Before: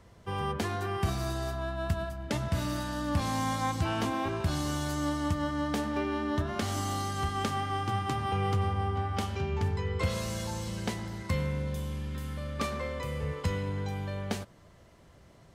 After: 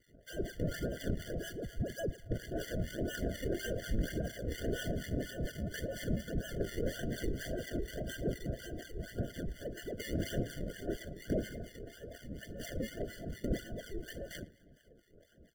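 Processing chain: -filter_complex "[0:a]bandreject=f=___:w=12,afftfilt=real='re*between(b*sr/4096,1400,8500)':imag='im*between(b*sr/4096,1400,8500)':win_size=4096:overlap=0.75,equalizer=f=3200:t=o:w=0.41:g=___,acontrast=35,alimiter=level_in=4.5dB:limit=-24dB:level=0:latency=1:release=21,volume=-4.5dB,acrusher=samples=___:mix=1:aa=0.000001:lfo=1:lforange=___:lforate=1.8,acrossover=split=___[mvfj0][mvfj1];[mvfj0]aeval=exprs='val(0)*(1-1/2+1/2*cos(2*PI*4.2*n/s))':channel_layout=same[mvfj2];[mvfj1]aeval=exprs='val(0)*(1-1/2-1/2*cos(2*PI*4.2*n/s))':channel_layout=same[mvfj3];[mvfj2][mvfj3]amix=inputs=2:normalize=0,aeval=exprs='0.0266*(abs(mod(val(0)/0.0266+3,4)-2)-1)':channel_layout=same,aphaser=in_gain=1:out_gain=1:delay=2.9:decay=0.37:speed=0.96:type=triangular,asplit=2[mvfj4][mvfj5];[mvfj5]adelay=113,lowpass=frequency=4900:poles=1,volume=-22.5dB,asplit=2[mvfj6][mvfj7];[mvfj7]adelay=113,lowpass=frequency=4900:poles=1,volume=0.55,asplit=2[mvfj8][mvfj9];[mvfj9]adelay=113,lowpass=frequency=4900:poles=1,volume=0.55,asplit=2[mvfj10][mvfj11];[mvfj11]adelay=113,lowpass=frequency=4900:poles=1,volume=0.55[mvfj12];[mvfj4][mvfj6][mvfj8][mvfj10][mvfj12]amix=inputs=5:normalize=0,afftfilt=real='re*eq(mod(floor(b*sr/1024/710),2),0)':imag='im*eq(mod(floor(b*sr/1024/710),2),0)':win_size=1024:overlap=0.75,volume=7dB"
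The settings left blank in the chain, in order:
5600, -10, 38, 38, 1000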